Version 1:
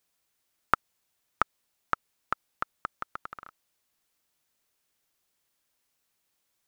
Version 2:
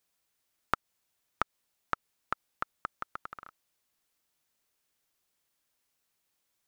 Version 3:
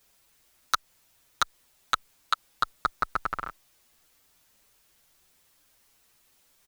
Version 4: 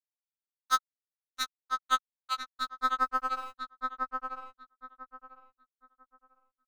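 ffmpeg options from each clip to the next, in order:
ffmpeg -i in.wav -af "acompressor=threshold=-25dB:ratio=2,volume=-2dB" out.wav
ffmpeg -i in.wav -filter_complex "[0:a]aeval=exprs='0.447*sin(PI/2*4.47*val(0)/0.447)':channel_layout=same,lowshelf=frequency=62:gain=10.5,asplit=2[link_01][link_02];[link_02]adelay=7,afreqshift=0.87[link_03];[link_01][link_03]amix=inputs=2:normalize=1" out.wav
ffmpeg -i in.wav -filter_complex "[0:a]aeval=exprs='sgn(val(0))*max(abs(val(0))-0.00447,0)':channel_layout=same,asplit=2[link_01][link_02];[link_02]adelay=997,lowpass=frequency=1800:poles=1,volume=-3.5dB,asplit=2[link_03][link_04];[link_04]adelay=997,lowpass=frequency=1800:poles=1,volume=0.25,asplit=2[link_05][link_06];[link_06]adelay=997,lowpass=frequency=1800:poles=1,volume=0.25,asplit=2[link_07][link_08];[link_08]adelay=997,lowpass=frequency=1800:poles=1,volume=0.25[link_09];[link_03][link_05][link_07][link_09]amix=inputs=4:normalize=0[link_10];[link_01][link_10]amix=inputs=2:normalize=0,afftfilt=real='re*3.46*eq(mod(b,12),0)':imag='im*3.46*eq(mod(b,12),0)':win_size=2048:overlap=0.75" out.wav

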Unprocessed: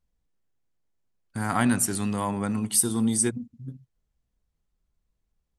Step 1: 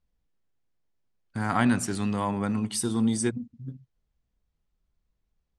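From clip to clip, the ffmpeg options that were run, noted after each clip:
ffmpeg -i in.wav -af "lowpass=5700" out.wav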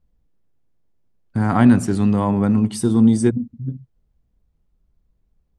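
ffmpeg -i in.wav -af "tiltshelf=frequency=890:gain=6.5,volume=5.5dB" out.wav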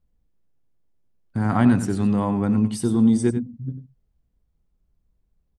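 ffmpeg -i in.wav -af "aecho=1:1:93:0.282,volume=-4dB" out.wav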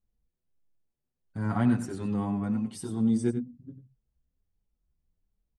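ffmpeg -i in.wav -filter_complex "[0:a]asplit=2[link_01][link_02];[link_02]adelay=6.8,afreqshift=1.3[link_03];[link_01][link_03]amix=inputs=2:normalize=1,volume=-6dB" out.wav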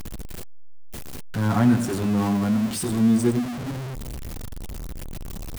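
ffmpeg -i in.wav -af "aeval=exprs='val(0)+0.5*0.0282*sgn(val(0))':channel_layout=same,volume=5dB" out.wav

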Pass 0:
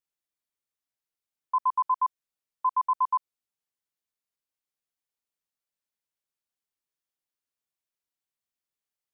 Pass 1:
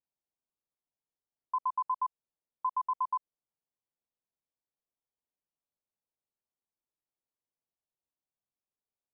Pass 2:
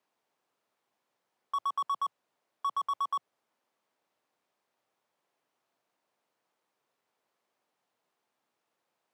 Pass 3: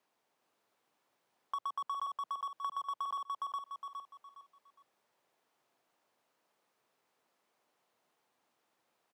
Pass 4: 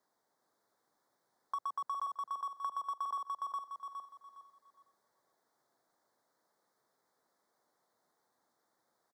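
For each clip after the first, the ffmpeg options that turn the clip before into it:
ffmpeg -i in.wav -af "lowpass=frequency=1000:width=0.5412,lowpass=frequency=1000:width=1.3066,acompressor=threshold=-28dB:ratio=6" out.wav
ffmpeg -i in.wav -filter_complex "[0:a]afreqshift=100,asplit=2[link_01][link_02];[link_02]highpass=frequency=720:poles=1,volume=30dB,asoftclip=type=tanh:threshold=-22dB[link_03];[link_01][link_03]amix=inputs=2:normalize=0,lowpass=frequency=1100:poles=1,volume=-6dB" out.wav
ffmpeg -i in.wav -af "aecho=1:1:412|824|1236|1648:0.631|0.189|0.0568|0.017,acompressor=threshold=-37dB:ratio=6,volume=1.5dB" out.wav
ffmpeg -i in.wav -af "asuperstop=centerf=2700:order=4:qfactor=1.5,aecho=1:1:501:0.106" out.wav

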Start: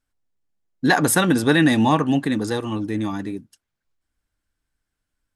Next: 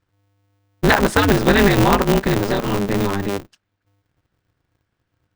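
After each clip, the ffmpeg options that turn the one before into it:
ffmpeg -i in.wav -filter_complex "[0:a]lowpass=3900,asplit=2[link_01][link_02];[link_02]acompressor=threshold=-25dB:ratio=6,volume=2dB[link_03];[link_01][link_03]amix=inputs=2:normalize=0,aeval=exprs='val(0)*sgn(sin(2*PI*100*n/s))':channel_layout=same" out.wav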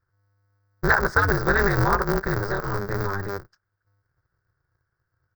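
ffmpeg -i in.wav -af "firequalizer=gain_entry='entry(130,0);entry(250,-17);entry(370,-3);entry(710,-6);entry(1500,6);entry(2800,-25);entry(4900,-1);entry(9600,-25);entry(16000,6)':delay=0.05:min_phase=1,volume=-3.5dB" out.wav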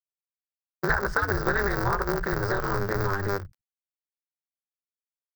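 ffmpeg -i in.wav -filter_complex "[0:a]aeval=exprs='sgn(val(0))*max(abs(val(0))-0.00316,0)':channel_layout=same,acompressor=threshold=-27dB:ratio=6,acrossover=split=150[link_01][link_02];[link_01]adelay=60[link_03];[link_03][link_02]amix=inputs=2:normalize=0,volume=5.5dB" out.wav

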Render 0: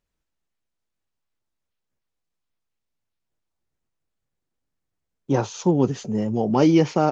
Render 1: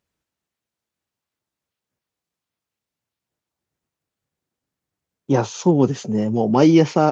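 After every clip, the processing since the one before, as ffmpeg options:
ffmpeg -i in.wav -af "highpass=81,volume=3.5dB" out.wav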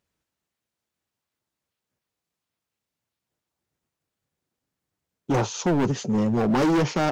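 ffmpeg -i in.wav -af "asoftclip=type=hard:threshold=-18.5dB" out.wav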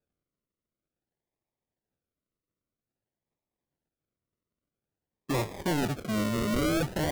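ffmpeg -i in.wav -af "acrusher=samples=42:mix=1:aa=0.000001:lfo=1:lforange=25.2:lforate=0.51,volume=-6.5dB" out.wav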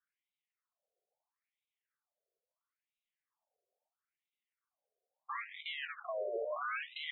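ffmpeg -i in.wav -af "acompressor=threshold=-37dB:ratio=2,afftfilt=real='re*between(b*sr/1024,530*pow(2900/530,0.5+0.5*sin(2*PI*0.75*pts/sr))/1.41,530*pow(2900/530,0.5+0.5*sin(2*PI*0.75*pts/sr))*1.41)':imag='im*between(b*sr/1024,530*pow(2900/530,0.5+0.5*sin(2*PI*0.75*pts/sr))/1.41,530*pow(2900/530,0.5+0.5*sin(2*PI*0.75*pts/sr))*1.41)':win_size=1024:overlap=0.75,volume=6dB" out.wav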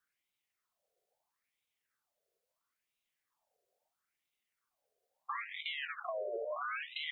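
ffmpeg -i in.wav -af "acompressor=threshold=-43dB:ratio=4,volume=6dB" out.wav

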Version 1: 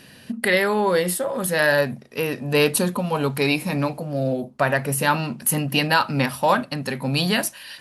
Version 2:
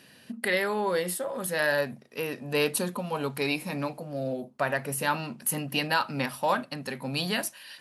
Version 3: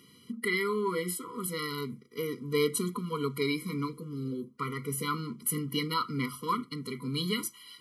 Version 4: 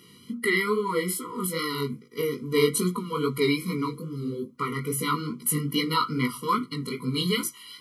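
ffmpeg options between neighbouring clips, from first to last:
ffmpeg -i in.wav -af "highpass=frequency=180:poles=1,volume=-7dB" out.wav
ffmpeg -i in.wav -af "afftfilt=real='re*eq(mod(floor(b*sr/1024/480),2),0)':imag='im*eq(mod(floor(b*sr/1024/480),2),0)':win_size=1024:overlap=0.75" out.wav
ffmpeg -i in.wav -af "flanger=delay=16:depth=5.6:speed=2.4,volume=8.5dB" out.wav

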